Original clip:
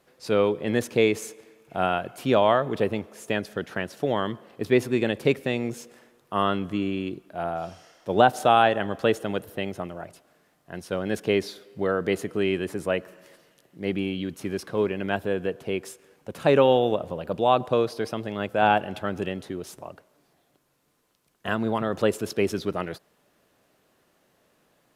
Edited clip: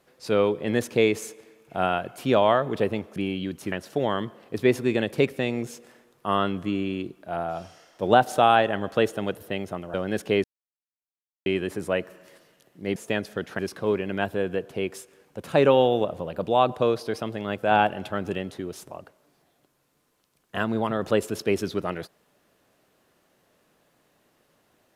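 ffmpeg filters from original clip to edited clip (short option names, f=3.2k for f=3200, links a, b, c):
-filter_complex "[0:a]asplit=8[a][b][c][d][e][f][g][h];[a]atrim=end=3.162[i];[b]atrim=start=13.938:end=14.502[j];[c]atrim=start=3.788:end=10.012[k];[d]atrim=start=10.918:end=11.42,asetpts=PTS-STARTPTS,afade=t=out:st=0.498:d=0.004:c=hsin[l];[e]atrim=start=11.42:end=12.44,asetpts=PTS-STARTPTS,volume=0[m];[f]atrim=start=12.44:end=13.942,asetpts=PTS-STARTPTS,afade=t=in:d=0.004:c=hsin[n];[g]atrim=start=3.158:end=3.792[o];[h]atrim=start=14.498[p];[i][j]acrossfade=d=0.004:c1=hsin:c2=hsin[q];[q][k]acrossfade=d=0.004:c1=hsin:c2=hsin[r];[l][m][n]concat=n=3:v=0:a=1[s];[r][s]acrossfade=d=0.004:c1=hsin:c2=hsin[t];[t][o]acrossfade=d=0.004:c1=hsin:c2=hsin[u];[u][p]acrossfade=d=0.004:c1=hsin:c2=hsin"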